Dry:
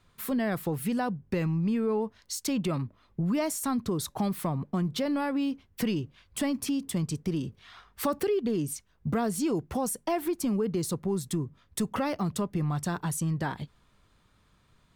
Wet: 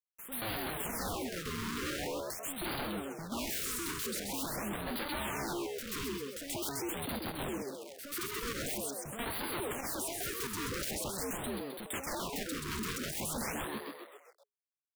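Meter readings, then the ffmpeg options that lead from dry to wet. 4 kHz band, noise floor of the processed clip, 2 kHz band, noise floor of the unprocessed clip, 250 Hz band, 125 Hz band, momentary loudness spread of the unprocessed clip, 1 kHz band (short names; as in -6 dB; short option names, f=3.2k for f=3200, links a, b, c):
+1.0 dB, -69 dBFS, +1.0 dB, -66 dBFS, -12.0 dB, -13.5 dB, 6 LU, -5.0 dB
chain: -filter_complex "[0:a]lowshelf=f=480:g=-5,asplit=2[a][b];[b]acompressor=threshold=-42dB:ratio=6,volume=1dB[c];[a][c]amix=inputs=2:normalize=0,acrusher=bits=5:mix=0:aa=0.000001,asoftclip=type=hard:threshold=-31dB,asplit=2[d][e];[e]asplit=6[f][g][h][i][j][k];[f]adelay=131,afreqshift=68,volume=-10dB[l];[g]adelay=262,afreqshift=136,volume=-15dB[m];[h]adelay=393,afreqshift=204,volume=-20.1dB[n];[i]adelay=524,afreqshift=272,volume=-25.1dB[o];[j]adelay=655,afreqshift=340,volume=-30.1dB[p];[k]adelay=786,afreqshift=408,volume=-35.2dB[q];[l][m][n][o][p][q]amix=inputs=6:normalize=0[r];[d][r]amix=inputs=2:normalize=0,aeval=exprs='0.0126*(abs(mod(val(0)/0.0126+3,4)-2)-1)':c=same,afftfilt=real='re*(1-between(b*sr/1024,640*pow(7000/640,0.5+0.5*sin(2*PI*0.45*pts/sr))/1.41,640*pow(7000/640,0.5+0.5*sin(2*PI*0.45*pts/sr))*1.41))':imag='im*(1-between(b*sr/1024,640*pow(7000/640,0.5+0.5*sin(2*PI*0.45*pts/sr))/1.41,640*pow(7000/640,0.5+0.5*sin(2*PI*0.45*pts/sr))*1.41))':win_size=1024:overlap=0.75,volume=6.5dB"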